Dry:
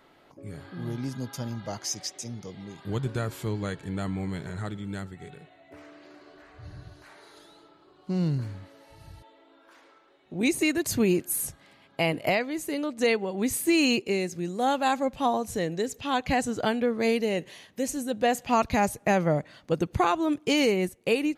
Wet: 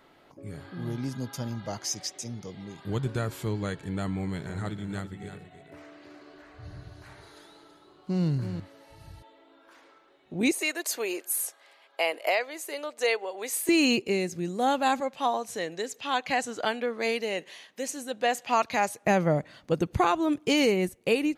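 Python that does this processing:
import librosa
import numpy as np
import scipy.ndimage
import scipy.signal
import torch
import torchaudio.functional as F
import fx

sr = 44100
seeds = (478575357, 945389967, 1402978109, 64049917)

y = fx.echo_single(x, sr, ms=327, db=-9.5, at=(4.17, 8.6))
y = fx.highpass(y, sr, hz=460.0, slope=24, at=(10.51, 13.69))
y = fx.weighting(y, sr, curve='A', at=(15.0, 19.05))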